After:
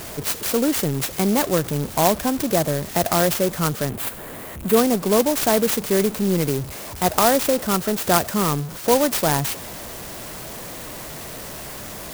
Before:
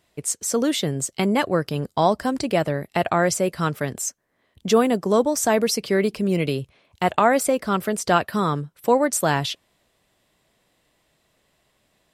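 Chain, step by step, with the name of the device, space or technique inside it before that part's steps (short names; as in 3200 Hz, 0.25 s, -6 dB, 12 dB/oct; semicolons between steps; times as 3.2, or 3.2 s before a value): early CD player with a faulty converter (zero-crossing step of -28 dBFS; clock jitter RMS 0.1 ms); 3.89–4.77 bell 5600 Hz -9.5 dB 1.1 oct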